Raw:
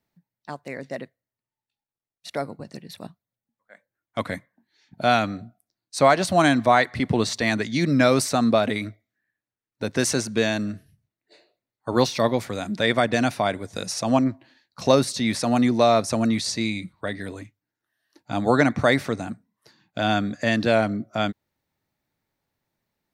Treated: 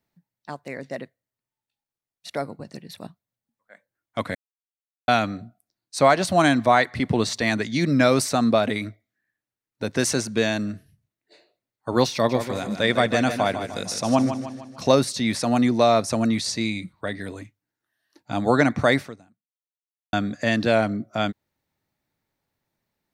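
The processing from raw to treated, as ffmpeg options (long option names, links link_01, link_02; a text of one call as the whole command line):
ffmpeg -i in.wav -filter_complex "[0:a]asettb=1/sr,asplit=3[link_01][link_02][link_03];[link_01]atrim=end=12.144[link_04];[link_02]atrim=start=12.14:end=14.84,asetpts=PTS-STARTPTS,afade=type=in:duration=0.004:curve=qsin,afade=type=out:start_time=2.696:duration=0.004:curve=qsin,aecho=1:1:152|304|456|608|760:0.355|0.17|0.0817|0.0392|0.0188,atrim=end_sample=119070[link_05];[link_03]atrim=start=14.836[link_06];[link_04][link_05]acrossfade=duration=0.004:curve1=hsin:curve2=qsin[link_07];[link_07][link_06]acrossfade=duration=0.004:curve1=qsin:curve2=hsin,asplit=4[link_08][link_09][link_10][link_11];[link_08]atrim=end=4.35,asetpts=PTS-STARTPTS,afade=type=out:start_time=4.346:duration=0.004:curve=hsin[link_12];[link_09]atrim=start=4.35:end=5.08,asetpts=PTS-STARTPTS,volume=0[link_13];[link_10]atrim=start=5.08:end=20.13,asetpts=PTS-STARTPTS,afade=type=in:duration=0.004:curve=hsin,afade=type=out:start_time=13.89:duration=1.16:curve=exp[link_14];[link_11]atrim=start=20.13,asetpts=PTS-STARTPTS,afade=type=in:duration=0.004:curve=hsin[link_15];[link_12][link_13][link_14][link_15]concat=n=4:v=0:a=1" out.wav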